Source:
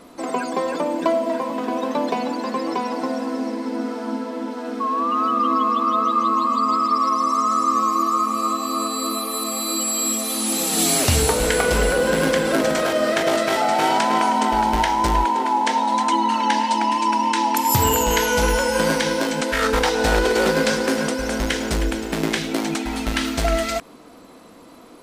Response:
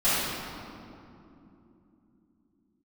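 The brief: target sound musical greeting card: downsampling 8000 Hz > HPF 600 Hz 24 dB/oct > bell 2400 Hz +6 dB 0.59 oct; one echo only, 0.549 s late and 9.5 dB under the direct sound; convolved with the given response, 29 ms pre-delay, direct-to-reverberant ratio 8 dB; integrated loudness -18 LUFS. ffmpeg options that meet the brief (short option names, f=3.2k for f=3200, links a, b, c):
-filter_complex "[0:a]aecho=1:1:549:0.335,asplit=2[a][b];[1:a]atrim=start_sample=2205,adelay=29[c];[b][c]afir=irnorm=-1:irlink=0,volume=-24dB[d];[a][d]amix=inputs=2:normalize=0,aresample=8000,aresample=44100,highpass=f=600:w=0.5412,highpass=f=600:w=1.3066,equalizer=f=2.4k:t=o:w=0.59:g=6,volume=2.5dB"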